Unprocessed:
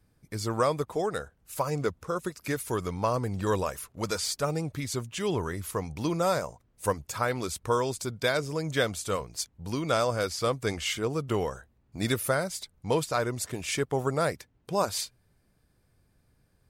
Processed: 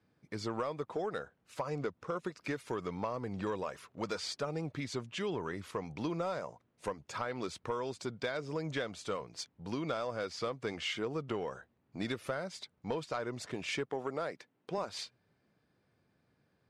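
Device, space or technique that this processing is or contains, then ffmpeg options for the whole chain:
AM radio: -filter_complex "[0:a]asettb=1/sr,asplit=3[s0][s1][s2];[s0]atrim=end=13.904[s3];[s1]atrim=start=13.9:end=14.78,asetpts=PTS-STARTPTS,afade=t=in:d=0.004:c=qsin,afade=t=out:st=0.876:d=0.004:c=qsin,highpass=180[s4];[s2]atrim=start=14.776[s5];[s3][s4]acrossfade=d=0.004:c1=hsin:c2=qsin[s6];[s6][s5]acrossfade=d=0.004:c1=qsin:c2=hsin,highpass=160,lowpass=4000,acompressor=threshold=0.0316:ratio=6,asoftclip=type=tanh:threshold=0.0794,volume=0.841"

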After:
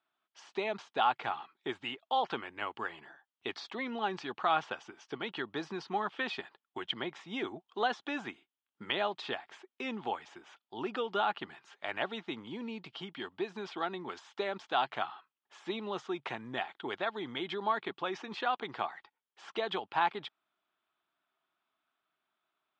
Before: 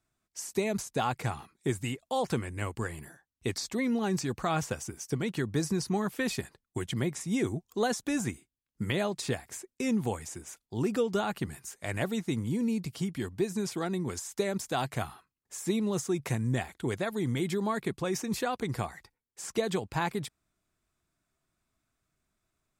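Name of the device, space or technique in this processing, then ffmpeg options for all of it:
phone earpiece: -af "highpass=460,equalizer=f=500:t=q:w=4:g=-6,equalizer=f=850:t=q:w=4:g=5,equalizer=f=1300:t=q:w=4:g=4,equalizer=f=2100:t=q:w=4:g=-3,equalizer=f=3200:t=q:w=4:g=7,lowpass=f=3600:w=0.5412,lowpass=f=3600:w=1.3066"

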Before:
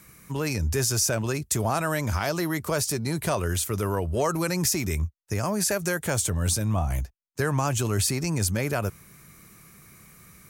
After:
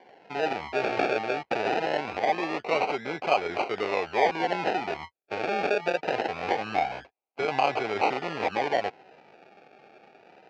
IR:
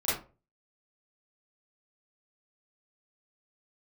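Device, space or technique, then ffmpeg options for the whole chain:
circuit-bent sampling toy: -af "acrusher=samples=34:mix=1:aa=0.000001:lfo=1:lforange=20.4:lforate=0.23,highpass=410,equalizer=f=440:t=q:w=4:g=4,equalizer=f=770:t=q:w=4:g=10,equalizer=f=1100:t=q:w=4:g=-3,equalizer=f=2400:t=q:w=4:g=8,equalizer=f=3500:t=q:w=4:g=-5,lowpass=f=4500:w=0.5412,lowpass=f=4500:w=1.3066"

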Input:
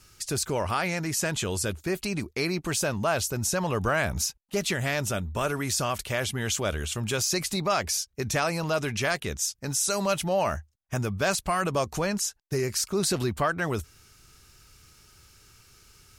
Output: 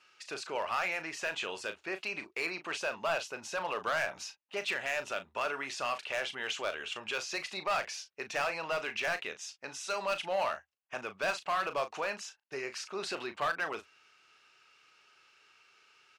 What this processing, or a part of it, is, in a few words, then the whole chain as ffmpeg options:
megaphone: -filter_complex "[0:a]highpass=620,lowpass=3100,equalizer=f=2700:t=o:w=0.27:g=7,asoftclip=type=hard:threshold=0.0668,asplit=2[s0][s1];[s1]adelay=37,volume=0.299[s2];[s0][s2]amix=inputs=2:normalize=0,volume=0.75"

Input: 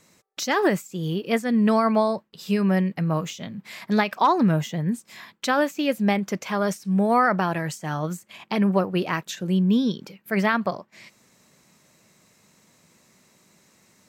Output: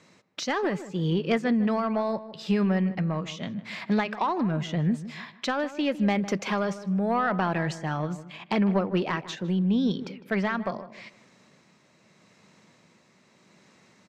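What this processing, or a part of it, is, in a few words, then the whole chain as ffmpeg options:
AM radio: -filter_complex "[0:a]highpass=100,lowpass=4400,acompressor=threshold=0.0794:ratio=5,asoftclip=type=tanh:threshold=0.158,tremolo=f=0.8:d=0.34,asettb=1/sr,asplit=3[s0][s1][s2];[s0]atrim=end=6.024[s3];[s1]atrim=start=6.02:end=6.65,asetpts=PTS-STARTPTS,afade=t=in:d=0.004:c=qsin,afade=t=out:st=0.626:d=0.004:c=qsin,highshelf=f=8100:g=11[s4];[s2]atrim=start=6.646[s5];[s3][s4]acrossfade=d=0.004:c1=hsin:c2=qsin[s6];[s6][s5]acrossfade=d=0.004:c1=qsin:c2=hsin,asplit=2[s7][s8];[s8]adelay=155,lowpass=f=1600:p=1,volume=0.211,asplit=2[s9][s10];[s10]adelay=155,lowpass=f=1600:p=1,volume=0.33,asplit=2[s11][s12];[s12]adelay=155,lowpass=f=1600:p=1,volume=0.33[s13];[s7][s9][s11][s13]amix=inputs=4:normalize=0,volume=1.41"

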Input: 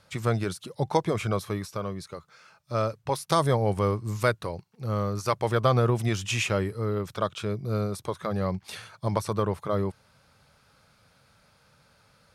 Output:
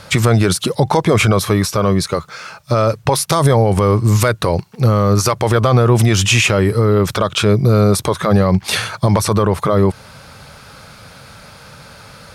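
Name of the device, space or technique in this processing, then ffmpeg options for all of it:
loud club master: -af "acompressor=threshold=0.0282:ratio=1.5,asoftclip=type=hard:threshold=0.168,alimiter=level_in=18.8:limit=0.891:release=50:level=0:latency=1,volume=0.708"

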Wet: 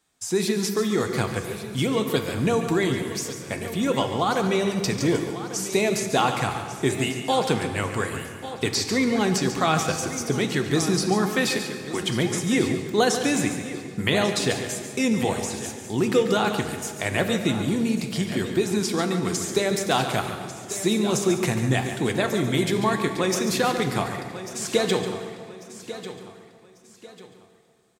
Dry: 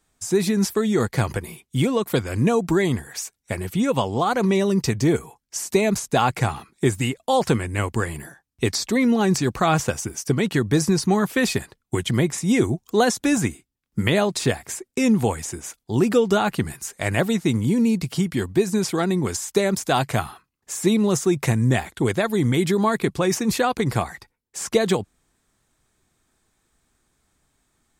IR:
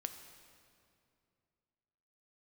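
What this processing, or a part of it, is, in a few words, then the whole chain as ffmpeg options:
PA in a hall: -filter_complex "[0:a]asettb=1/sr,asplit=3[s0][s1][s2];[s0]atrim=end=11.364[s3];[s1]atrim=start=11.36:end=12.01,asetpts=PTS-STARTPTS,afade=t=in:d=0.004:c=qsin,afade=t=out:st=0.646:d=0.004:c=qsin,highpass=200[s4];[s2]atrim=start=12.006[s5];[s3][s4]acrossfade=d=0.004:c1=hsin:c2=qsin[s6];[s6][s5]acrossfade=d=0.004:c1=qsin:c2=hsin,highpass=f=160:p=1,equalizer=f=3700:t=o:w=1.4:g=4,aecho=1:1:142:0.299,aecho=1:1:1144|2288|3432:0.211|0.0697|0.023[s7];[1:a]atrim=start_sample=2205[s8];[s7][s8]afir=irnorm=-1:irlink=0"

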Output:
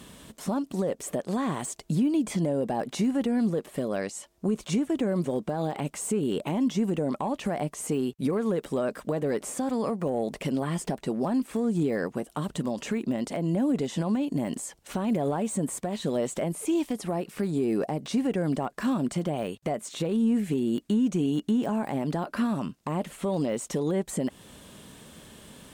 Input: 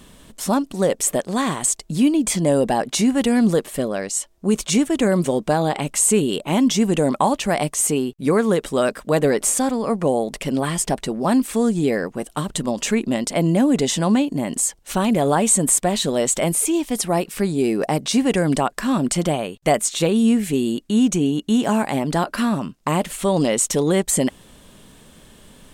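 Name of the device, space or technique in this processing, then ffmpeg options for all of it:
podcast mastering chain: -af "highpass=63,deesser=0.95,acompressor=threshold=0.1:ratio=2.5,alimiter=limit=0.133:level=0:latency=1:release=343" -ar 48000 -c:a libmp3lame -b:a 96k

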